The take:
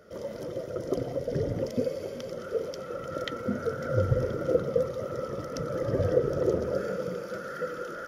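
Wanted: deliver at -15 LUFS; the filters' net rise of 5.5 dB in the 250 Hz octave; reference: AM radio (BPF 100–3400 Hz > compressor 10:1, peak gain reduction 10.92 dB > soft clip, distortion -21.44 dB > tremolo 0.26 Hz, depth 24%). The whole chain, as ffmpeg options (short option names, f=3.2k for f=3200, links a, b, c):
-af "highpass=100,lowpass=3.4k,equalizer=f=250:t=o:g=7.5,acompressor=threshold=-26dB:ratio=10,asoftclip=threshold=-21dB,tremolo=f=0.26:d=0.24,volume=19.5dB"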